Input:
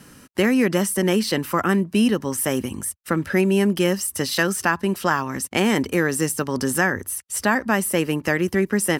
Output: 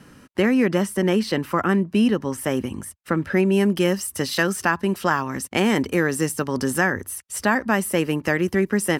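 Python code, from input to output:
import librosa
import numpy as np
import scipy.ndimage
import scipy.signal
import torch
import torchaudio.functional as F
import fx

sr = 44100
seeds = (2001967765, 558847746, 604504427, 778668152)

y = fx.high_shelf(x, sr, hz=5000.0, db=fx.steps((0.0, -11.5), (3.52, -4.5)))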